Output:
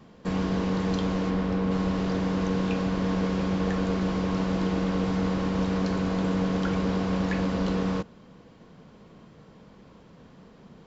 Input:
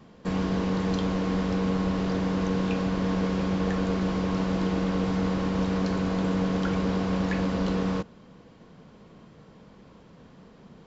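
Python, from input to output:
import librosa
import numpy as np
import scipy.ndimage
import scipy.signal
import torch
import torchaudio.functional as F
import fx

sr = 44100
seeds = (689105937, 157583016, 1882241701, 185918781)

y = fx.high_shelf(x, sr, hz=fx.line((1.29, 5600.0), (1.7, 3400.0)), db=-10.0, at=(1.29, 1.7), fade=0.02)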